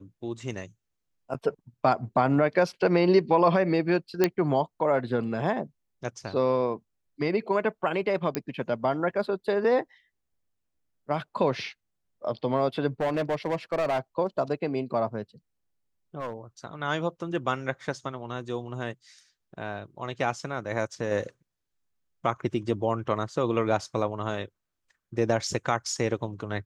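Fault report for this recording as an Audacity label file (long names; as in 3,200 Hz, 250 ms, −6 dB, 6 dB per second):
4.240000	4.240000	click −8 dBFS
8.350000	8.350000	click −11 dBFS
13.000000	13.990000	clipping −22.5 dBFS
16.200000	16.330000	clipping −28.5 dBFS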